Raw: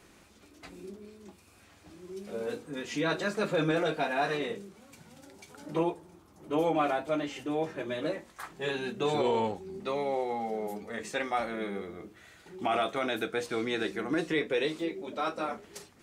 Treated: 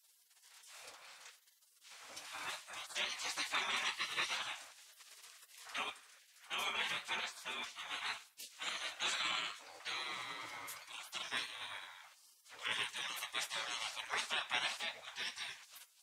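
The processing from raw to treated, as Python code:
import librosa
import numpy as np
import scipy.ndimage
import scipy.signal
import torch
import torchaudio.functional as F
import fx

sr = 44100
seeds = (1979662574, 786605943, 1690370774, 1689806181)

p1 = fx.spec_gate(x, sr, threshold_db=-25, keep='weak')
p2 = fx.highpass(p1, sr, hz=680.0, slope=6)
p3 = fx.high_shelf(p2, sr, hz=11000.0, db=-10.0)
p4 = p3 + fx.echo_feedback(p3, sr, ms=105, feedback_pct=24, wet_db=-23, dry=0)
y = p4 * 10.0 ** (9.5 / 20.0)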